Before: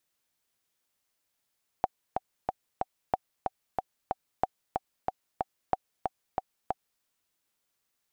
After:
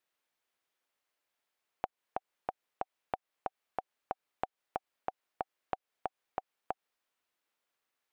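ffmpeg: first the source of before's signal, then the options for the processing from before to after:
-f lavfi -i "aevalsrc='pow(10,(-11-4*gte(mod(t,4*60/185),60/185))/20)*sin(2*PI*758*mod(t,60/185))*exp(-6.91*mod(t,60/185)/0.03)':duration=5.18:sample_rate=44100"
-af "bass=frequency=250:gain=-13,treble=frequency=4000:gain=-10,acompressor=threshold=-32dB:ratio=6"

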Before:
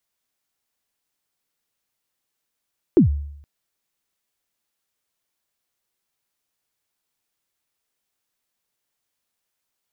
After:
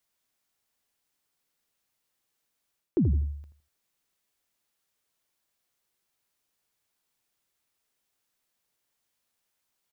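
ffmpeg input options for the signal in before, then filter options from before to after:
-f lavfi -i "aevalsrc='0.447*pow(10,-3*t/0.74)*sin(2*PI*(400*0.116/log(72/400)*(exp(log(72/400)*min(t,0.116)/0.116)-1)+72*max(t-0.116,0)))':duration=0.47:sample_rate=44100"
-filter_complex "[0:a]areverse,acompressor=threshold=-23dB:ratio=5,areverse,asplit=2[link_01][link_02];[link_02]adelay=81,lowpass=frequency=1100:poles=1,volume=-10dB,asplit=2[link_03][link_04];[link_04]adelay=81,lowpass=frequency=1100:poles=1,volume=0.27,asplit=2[link_05][link_06];[link_06]adelay=81,lowpass=frequency=1100:poles=1,volume=0.27[link_07];[link_01][link_03][link_05][link_07]amix=inputs=4:normalize=0"

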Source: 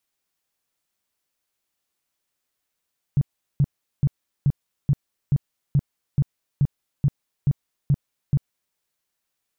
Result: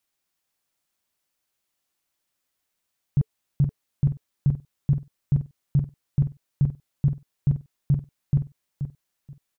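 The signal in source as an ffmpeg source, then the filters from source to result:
-f lavfi -i "aevalsrc='0.2*sin(2*PI*141*mod(t,0.43))*lt(mod(t,0.43),6/141)':duration=5.59:sample_rate=44100"
-filter_complex "[0:a]bandreject=frequency=440:width=14,asplit=2[link_01][link_02];[link_02]aecho=0:1:479|958|1437:0.355|0.0745|0.0156[link_03];[link_01][link_03]amix=inputs=2:normalize=0"

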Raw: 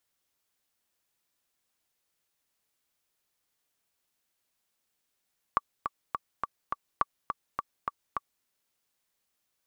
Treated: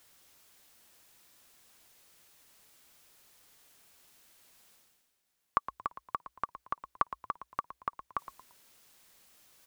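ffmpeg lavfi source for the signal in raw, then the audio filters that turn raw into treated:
-f lavfi -i "aevalsrc='pow(10,(-10.5-6.5*gte(mod(t,5*60/208),60/208))/20)*sin(2*PI*1150*mod(t,60/208))*exp(-6.91*mod(t,60/208)/0.03)':duration=2.88:sample_rate=44100"
-filter_complex "[0:a]areverse,acompressor=mode=upward:threshold=-47dB:ratio=2.5,areverse,asplit=4[link_01][link_02][link_03][link_04];[link_02]adelay=114,afreqshift=-61,volume=-13dB[link_05];[link_03]adelay=228,afreqshift=-122,volume=-22.6dB[link_06];[link_04]adelay=342,afreqshift=-183,volume=-32.3dB[link_07];[link_01][link_05][link_06][link_07]amix=inputs=4:normalize=0"

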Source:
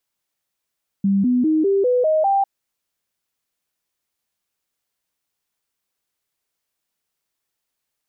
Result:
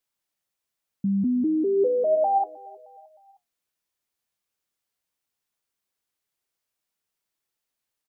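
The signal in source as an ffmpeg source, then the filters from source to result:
-f lavfi -i "aevalsrc='0.2*clip(min(mod(t,0.2),0.2-mod(t,0.2))/0.005,0,1)*sin(2*PI*197*pow(2,floor(t/0.2)/3)*mod(t,0.2))':duration=1.4:sample_rate=44100"
-af "flanger=delay=7.6:depth=3.8:regen=73:speed=0.92:shape=triangular,aecho=1:1:310|620|930:0.075|0.0382|0.0195"

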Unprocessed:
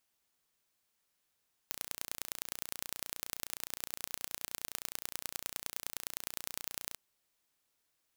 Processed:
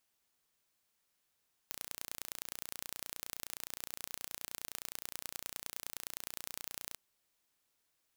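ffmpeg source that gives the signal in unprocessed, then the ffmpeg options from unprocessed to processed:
-f lavfi -i "aevalsrc='0.376*eq(mod(n,1490),0)*(0.5+0.5*eq(mod(n,4470),0))':duration=5.24:sample_rate=44100"
-af "asoftclip=type=tanh:threshold=-11dB"

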